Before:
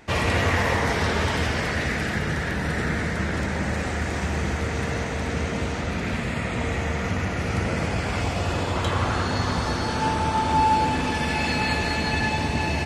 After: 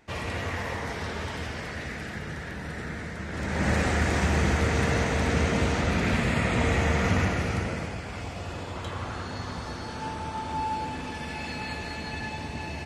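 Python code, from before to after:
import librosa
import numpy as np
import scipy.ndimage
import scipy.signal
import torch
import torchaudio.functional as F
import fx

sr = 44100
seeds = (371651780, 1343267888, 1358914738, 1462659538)

y = fx.gain(x, sr, db=fx.line((3.26, -10.0), (3.69, 2.0), (7.21, 2.0), (8.02, -10.5)))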